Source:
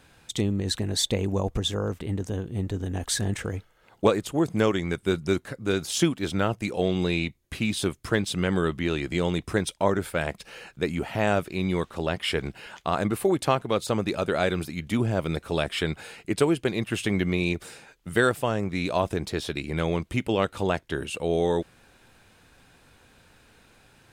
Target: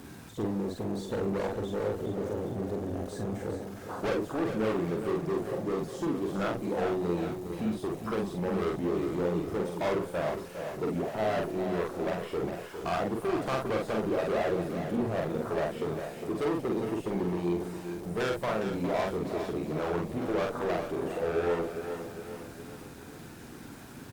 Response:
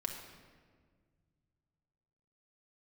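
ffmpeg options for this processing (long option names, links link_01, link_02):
-filter_complex "[0:a]aeval=exprs='val(0)+0.5*0.0447*sgn(val(0))':channel_layout=same,deesser=0.7,afwtdn=0.0398,highpass=frequency=870:poles=1,equalizer=frequency=2800:width=0.87:gain=-5.5,volume=32.5dB,asoftclip=hard,volume=-32.5dB,asplit=2[link_01][link_02];[link_02]adelay=46,volume=-2.5dB[link_03];[link_01][link_03]amix=inputs=2:normalize=0,asplit=2[link_04][link_05];[link_05]aecho=0:1:408|816|1224|1632|2040|2448:0.376|0.192|0.0978|0.0499|0.0254|0.013[link_06];[link_04][link_06]amix=inputs=2:normalize=0,volume=4.5dB" -ar 48000 -c:a libopus -b:a 48k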